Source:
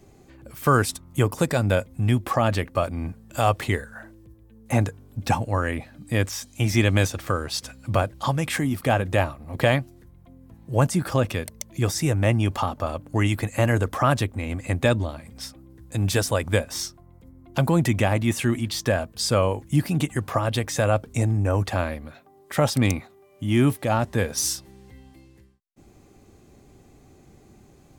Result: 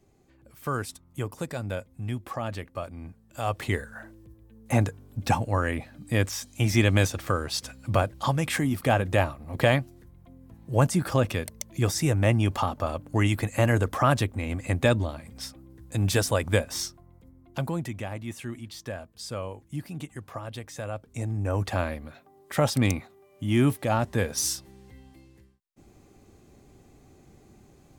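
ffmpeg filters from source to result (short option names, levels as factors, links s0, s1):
-af "volume=2.99,afade=t=in:st=3.38:d=0.46:silence=0.334965,afade=t=out:st=16.81:d=1.11:silence=0.251189,afade=t=in:st=21.04:d=0.73:silence=0.281838"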